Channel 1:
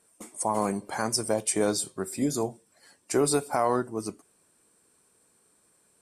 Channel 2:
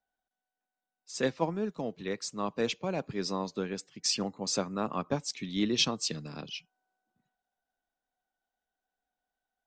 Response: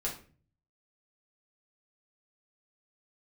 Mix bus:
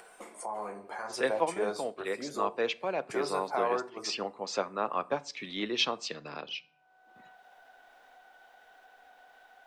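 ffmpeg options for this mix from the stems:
-filter_complex "[0:a]volume=-6dB,asplit=2[a][b];[b]volume=-9dB[c];[1:a]volume=3dB,asplit=3[d][e][f];[e]volume=-17.5dB[g];[f]apad=whole_len=265280[h];[a][h]sidechaingate=range=-11dB:threshold=-46dB:ratio=16:detection=peak[i];[2:a]atrim=start_sample=2205[j];[c][g]amix=inputs=2:normalize=0[k];[k][j]afir=irnorm=-1:irlink=0[l];[i][d][l]amix=inputs=3:normalize=0,acrossover=split=400 3500:gain=0.112 1 0.158[m][n][o];[m][n][o]amix=inputs=3:normalize=0,acompressor=mode=upward:threshold=-34dB:ratio=2.5"

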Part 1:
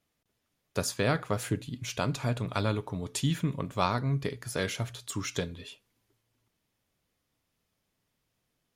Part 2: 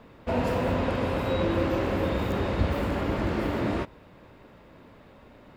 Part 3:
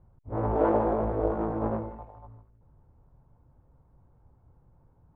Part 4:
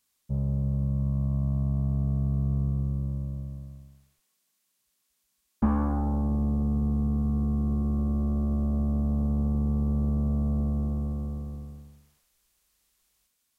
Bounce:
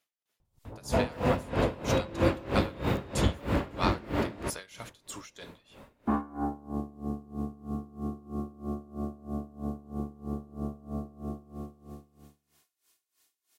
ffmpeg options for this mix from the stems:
-filter_complex "[0:a]highpass=f=1.1k:p=1,volume=2.5dB,asplit=2[a][b];[1:a]adelay=650,volume=2.5dB[c];[2:a]adelay=400,volume=2dB[d];[3:a]highpass=180,aecho=1:1:2.8:0.65,adelay=450,volume=2.5dB[e];[b]apad=whole_len=244835[f];[d][f]sidechaincompress=threshold=-39dB:ratio=8:attack=16:release=390[g];[a][c][g][e]amix=inputs=4:normalize=0,aeval=exprs='val(0)*pow(10,-22*(0.5-0.5*cos(2*PI*3.1*n/s))/20)':c=same"

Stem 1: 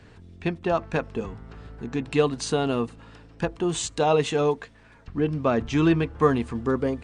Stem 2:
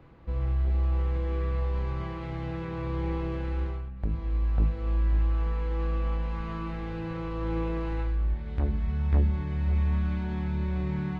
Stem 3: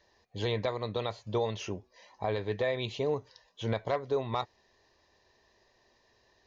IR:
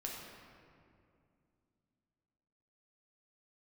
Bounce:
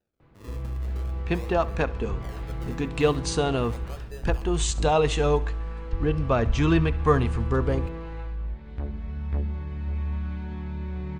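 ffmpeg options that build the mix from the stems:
-filter_complex "[0:a]asubboost=boost=10:cutoff=70,adelay=850,volume=0.5dB,asplit=2[a][b];[b]volume=-19.5dB[c];[1:a]adelay=200,volume=-6dB,asplit=2[d][e];[e]volume=-8dB[f];[2:a]equalizer=f=1.3k:t=o:w=0.54:g=-13.5,acrusher=samples=40:mix=1:aa=0.000001:lfo=1:lforange=40:lforate=0.42,volume=-13.5dB,asplit=2[g][h];[h]volume=-16dB[i];[3:a]atrim=start_sample=2205[j];[f][j]afir=irnorm=-1:irlink=0[k];[c][i]amix=inputs=2:normalize=0,aecho=0:1:68|136|204|272|340|408|476:1|0.48|0.23|0.111|0.0531|0.0255|0.0122[l];[a][d][g][k][l]amix=inputs=5:normalize=0"

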